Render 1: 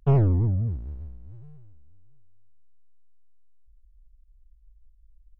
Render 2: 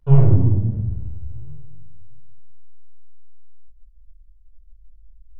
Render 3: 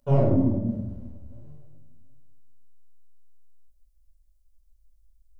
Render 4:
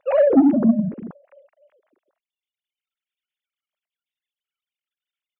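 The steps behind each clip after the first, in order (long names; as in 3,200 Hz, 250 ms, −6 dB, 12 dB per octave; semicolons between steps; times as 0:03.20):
convolution reverb RT60 0.70 s, pre-delay 16 ms, DRR −4 dB; level −6.5 dB
bass and treble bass −11 dB, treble +12 dB; hollow resonant body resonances 240/570 Hz, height 17 dB, ringing for 50 ms; level −3 dB
three sine waves on the formant tracks; high-shelf EQ 2,600 Hz +9 dB; soft clipping −14.5 dBFS, distortion −14 dB; level +7.5 dB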